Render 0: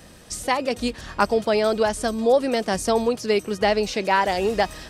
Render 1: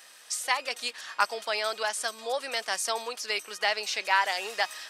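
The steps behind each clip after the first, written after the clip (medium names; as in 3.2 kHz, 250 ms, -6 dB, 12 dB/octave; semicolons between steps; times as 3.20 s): high-pass 1.2 kHz 12 dB/octave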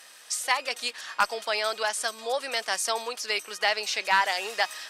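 one-sided clip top -15.5 dBFS, bottom -12.5 dBFS; trim +2 dB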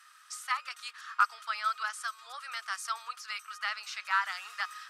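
ladder high-pass 1.2 kHz, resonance 80%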